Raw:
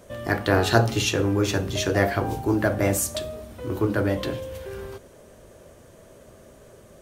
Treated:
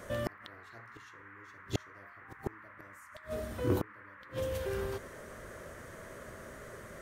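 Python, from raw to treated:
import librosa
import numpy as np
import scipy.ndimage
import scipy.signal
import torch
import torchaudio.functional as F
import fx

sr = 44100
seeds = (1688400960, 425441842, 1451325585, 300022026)

y = fx.gate_flip(x, sr, shuts_db=-17.0, range_db=-37)
y = fx.dmg_noise_band(y, sr, seeds[0], low_hz=1000.0, high_hz=2000.0, level_db=-54.0)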